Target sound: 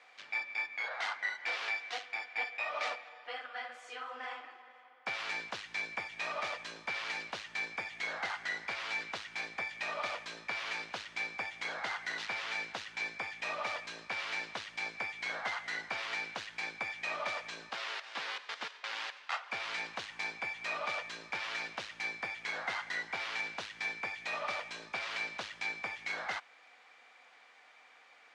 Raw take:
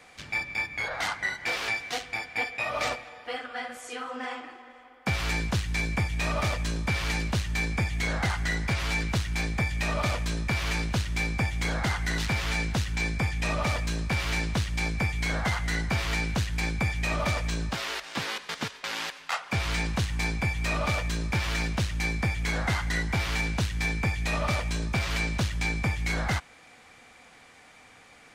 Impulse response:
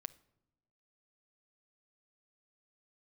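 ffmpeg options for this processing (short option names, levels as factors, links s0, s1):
-af "highpass=620,lowpass=4400,volume=0.531"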